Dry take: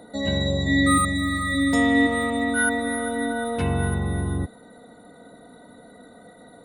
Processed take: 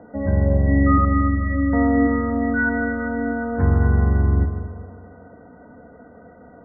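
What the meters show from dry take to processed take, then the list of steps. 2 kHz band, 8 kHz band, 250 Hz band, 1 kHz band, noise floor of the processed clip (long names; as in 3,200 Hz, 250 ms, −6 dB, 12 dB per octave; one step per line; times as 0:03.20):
−2.0 dB, below −40 dB, +3.0 dB, +1.5 dB, −46 dBFS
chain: Butterworth low-pass 1,800 Hz 72 dB per octave
parametric band 75 Hz +13 dB 0.58 octaves
on a send: echo machine with several playback heads 77 ms, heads second and third, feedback 46%, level −11 dB
on the sum: level +1.5 dB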